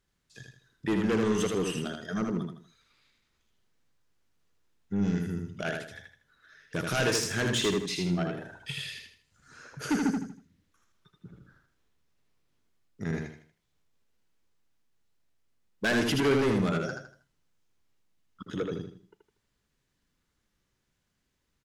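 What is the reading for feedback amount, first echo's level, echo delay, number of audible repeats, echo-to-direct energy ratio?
34%, -4.0 dB, 79 ms, 4, -3.5 dB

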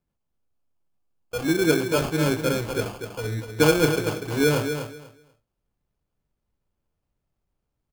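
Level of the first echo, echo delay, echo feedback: -8.0 dB, 0.244 s, 19%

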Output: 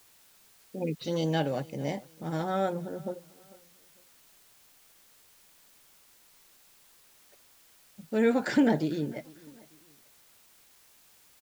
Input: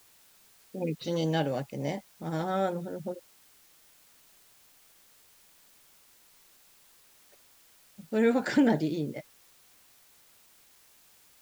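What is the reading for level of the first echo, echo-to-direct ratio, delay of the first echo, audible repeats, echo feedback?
-22.5 dB, -22.0 dB, 0.448 s, 2, 34%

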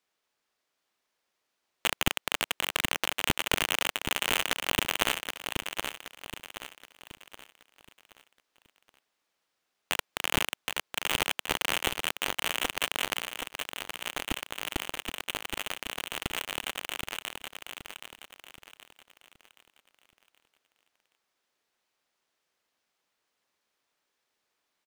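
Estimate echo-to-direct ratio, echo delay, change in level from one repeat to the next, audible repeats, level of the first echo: -5.5 dB, 0.774 s, -8.0 dB, 4, -6.5 dB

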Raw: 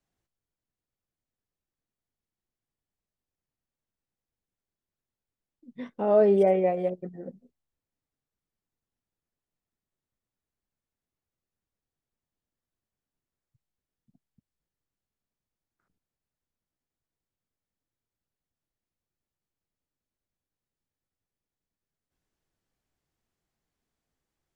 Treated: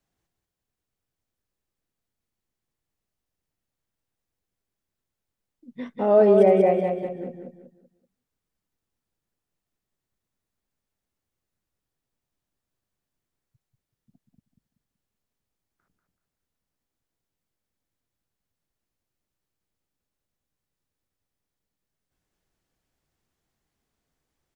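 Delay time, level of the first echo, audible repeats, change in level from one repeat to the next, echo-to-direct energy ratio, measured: 0.19 s, -5.0 dB, 4, -9.5 dB, -4.5 dB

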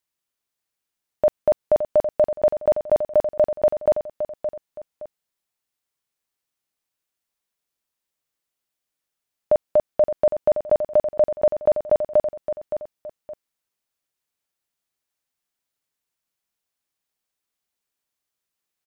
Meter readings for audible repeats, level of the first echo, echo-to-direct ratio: 2, -9.0 dB, -8.5 dB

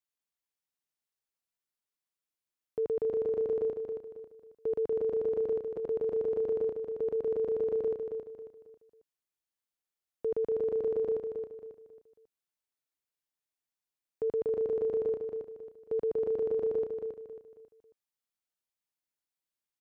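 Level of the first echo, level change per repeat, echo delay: -6.0 dB, -9.0 dB, 0.272 s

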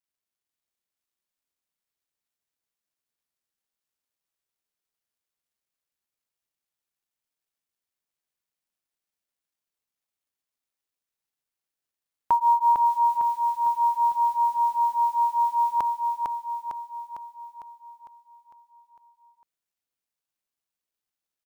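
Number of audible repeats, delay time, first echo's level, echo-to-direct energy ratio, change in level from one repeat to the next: 7, 0.453 s, -4.0 dB, -2.5 dB, -5.0 dB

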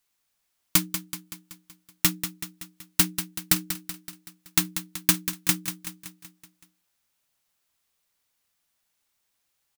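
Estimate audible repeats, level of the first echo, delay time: 5, -10.0 dB, 0.189 s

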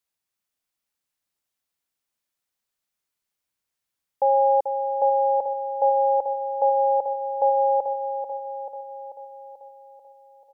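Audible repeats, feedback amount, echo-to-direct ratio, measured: 7, 59%, -5.5 dB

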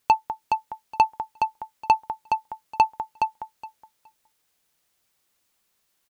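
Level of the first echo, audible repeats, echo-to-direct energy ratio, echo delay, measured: -5.5 dB, 2, -5.5 dB, 0.418 s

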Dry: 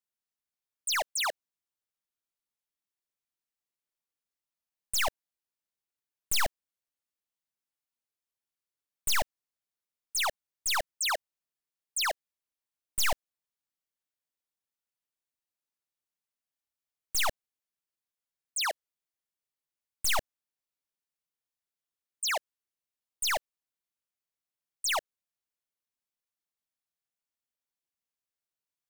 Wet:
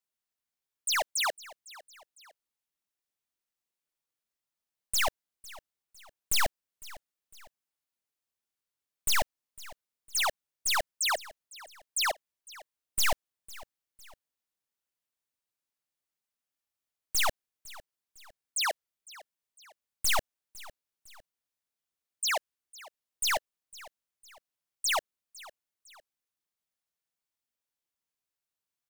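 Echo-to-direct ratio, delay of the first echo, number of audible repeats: -19.5 dB, 0.505 s, 2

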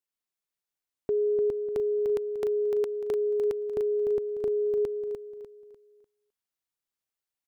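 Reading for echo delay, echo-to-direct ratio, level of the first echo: 0.298 s, -5.5 dB, -6.0 dB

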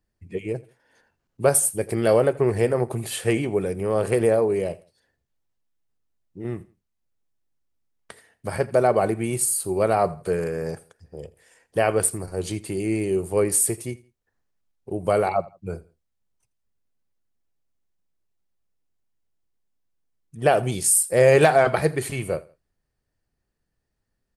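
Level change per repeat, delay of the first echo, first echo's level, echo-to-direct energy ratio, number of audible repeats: -9.5 dB, 83 ms, -21.5 dB, -21.0 dB, 2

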